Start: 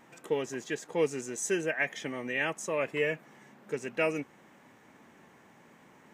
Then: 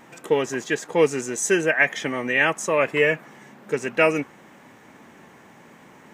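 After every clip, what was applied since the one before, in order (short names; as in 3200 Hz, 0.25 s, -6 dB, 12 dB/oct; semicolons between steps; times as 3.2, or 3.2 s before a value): dynamic EQ 1300 Hz, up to +4 dB, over -46 dBFS, Q 0.92; gain +9 dB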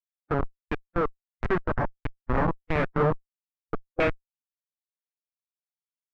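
Schmitt trigger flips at -15.5 dBFS; harmonic-percussive split harmonic +6 dB; LFO low-pass saw down 1.5 Hz 730–2400 Hz; gain -2 dB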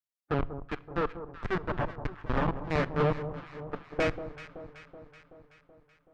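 tube stage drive 21 dB, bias 0.65; echo with dull and thin repeats by turns 0.189 s, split 1100 Hz, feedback 76%, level -11 dB; on a send at -17 dB: reverb RT60 0.95 s, pre-delay 7 ms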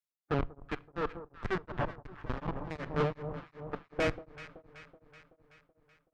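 tube stage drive 20 dB, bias 0.35; beating tremolo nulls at 2.7 Hz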